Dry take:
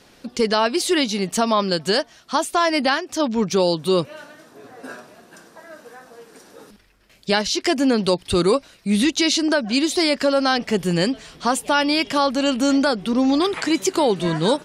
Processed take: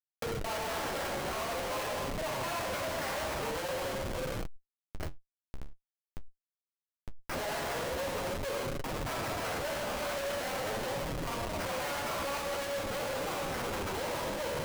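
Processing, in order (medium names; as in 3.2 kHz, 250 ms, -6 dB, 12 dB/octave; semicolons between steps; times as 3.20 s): time reversed locally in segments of 221 ms; sample-rate reducer 3.6 kHz, jitter 0%; compression 16:1, threshold -20 dBFS, peak gain reduction 8 dB; elliptic high-pass 510 Hz, stop band 80 dB; word length cut 8-bit, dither none; Schroeder reverb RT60 1.9 s, combs from 33 ms, DRR -1 dB; Schmitt trigger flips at -27 dBFS; flange 0.45 Hz, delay 6.1 ms, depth 8.8 ms, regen -33%; peak limiter -31 dBFS, peak gain reduction 7 dB; decay stretcher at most 46 dB/s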